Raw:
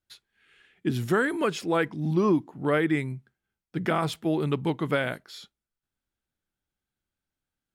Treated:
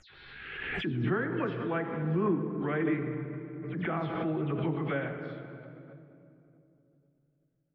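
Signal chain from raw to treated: spectral delay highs early, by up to 0.121 s; LPF 2700 Hz 24 dB/oct; low shelf 140 Hz +4.5 dB; reverb RT60 2.8 s, pre-delay 5 ms, DRR 4.5 dB; backwards sustainer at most 34 dB/s; gain -8.5 dB

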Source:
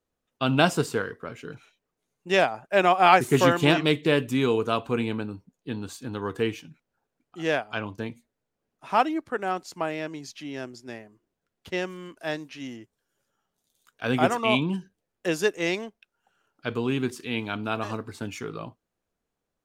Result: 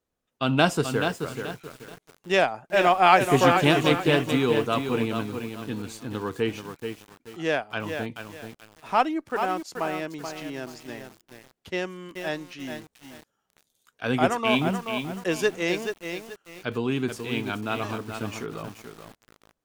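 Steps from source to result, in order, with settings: added harmonics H 8 -38 dB, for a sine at -3.5 dBFS; lo-fi delay 0.431 s, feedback 35%, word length 7-bit, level -6.5 dB

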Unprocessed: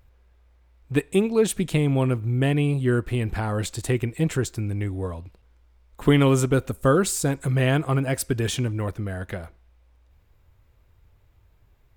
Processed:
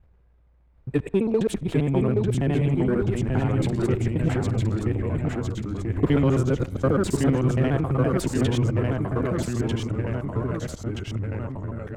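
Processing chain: local time reversal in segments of 67 ms; LPF 1100 Hz 6 dB/oct; in parallel at -7.5 dB: overloaded stage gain 19 dB; on the sum: transient shaper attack +2 dB, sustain +8 dB; echoes that change speed 0.743 s, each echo -1 st, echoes 3; gain -5 dB

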